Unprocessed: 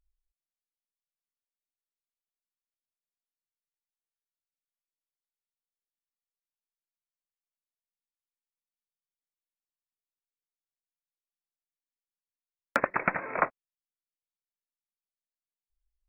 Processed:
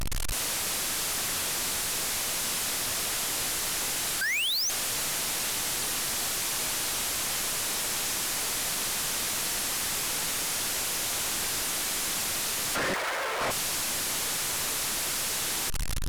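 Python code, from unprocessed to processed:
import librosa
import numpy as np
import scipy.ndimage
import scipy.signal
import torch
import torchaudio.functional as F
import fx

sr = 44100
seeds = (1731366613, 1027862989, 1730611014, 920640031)

y = fx.delta_mod(x, sr, bps=64000, step_db=-19.5)
y = fx.spec_paint(y, sr, seeds[0], shape='rise', start_s=4.21, length_s=0.49, low_hz=1500.0, high_hz=6500.0, level_db=-15.0)
y = fx.highpass(y, sr, hz=450.0, slope=24, at=(12.94, 13.41))
y = np.clip(y, -10.0 ** (-25.0 / 20.0), 10.0 ** (-25.0 / 20.0))
y = F.gain(torch.from_numpy(y), -2.0).numpy()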